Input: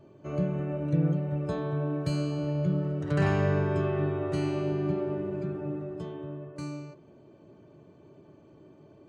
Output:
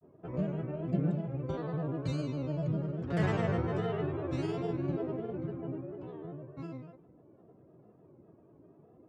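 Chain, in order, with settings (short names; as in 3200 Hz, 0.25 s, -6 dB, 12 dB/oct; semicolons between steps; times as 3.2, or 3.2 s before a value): low-pass opened by the level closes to 1500 Hz, open at -23 dBFS; grains, spray 19 ms, pitch spread up and down by 3 st; mismatched tape noise reduction decoder only; gain -3.5 dB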